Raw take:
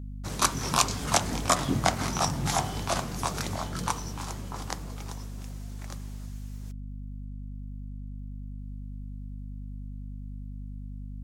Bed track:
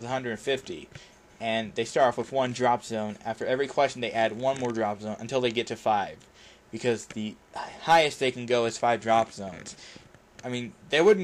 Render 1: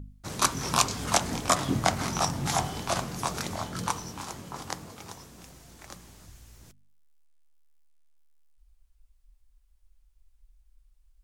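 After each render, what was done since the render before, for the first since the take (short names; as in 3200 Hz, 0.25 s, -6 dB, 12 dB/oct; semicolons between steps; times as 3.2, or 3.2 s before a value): de-hum 50 Hz, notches 5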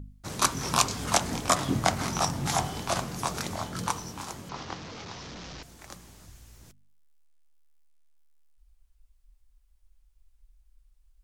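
4.49–5.63 delta modulation 32 kbps, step -35.5 dBFS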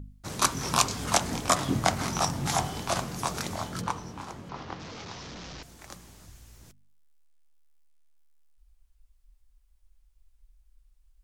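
3.81–4.8 LPF 2200 Hz 6 dB/oct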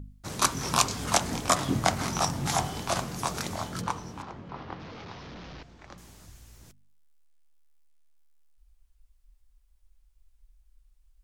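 4.22–5.98 air absorption 190 m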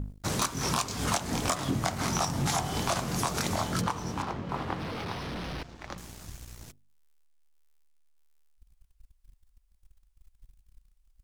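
compressor 8:1, threshold -32 dBFS, peak gain reduction 16 dB; sample leveller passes 2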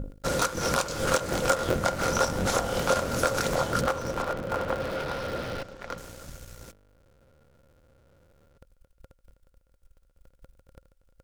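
cycle switcher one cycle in 3, inverted; small resonant body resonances 530/1400 Hz, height 15 dB, ringing for 45 ms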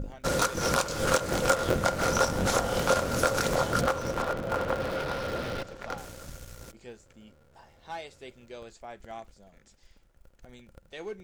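add bed track -19.5 dB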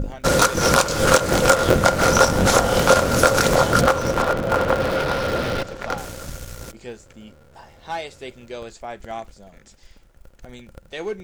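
gain +10 dB; limiter -1 dBFS, peak gain reduction 2 dB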